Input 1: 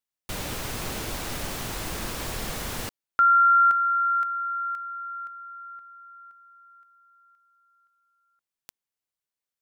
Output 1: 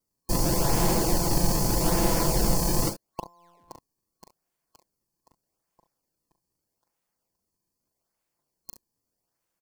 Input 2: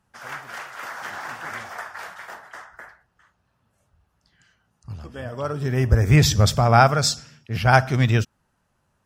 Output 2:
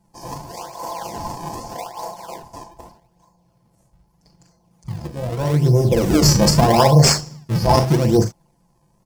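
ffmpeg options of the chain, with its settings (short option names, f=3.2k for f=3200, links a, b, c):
-filter_complex "[0:a]afftfilt=real='re*lt(hypot(re,im),1.12)':imag='im*lt(hypot(re,im),1.12)':win_size=1024:overlap=0.75,aecho=1:1:5.9:0.89,asplit=2[a][b];[b]aecho=0:1:40|68:0.447|0.188[c];[a][c]amix=inputs=2:normalize=0,afftfilt=real='re*(1-between(b*sr/4096,1100,4200))':imag='im*(1-between(b*sr/4096,1100,4200))':win_size=4096:overlap=0.75,asplit=2[d][e];[e]acrusher=samples=36:mix=1:aa=0.000001:lfo=1:lforange=57.6:lforate=0.81,volume=-4dB[f];[d][f]amix=inputs=2:normalize=0,alimiter=level_in=4.5dB:limit=-1dB:release=50:level=0:latency=1,volume=-1dB"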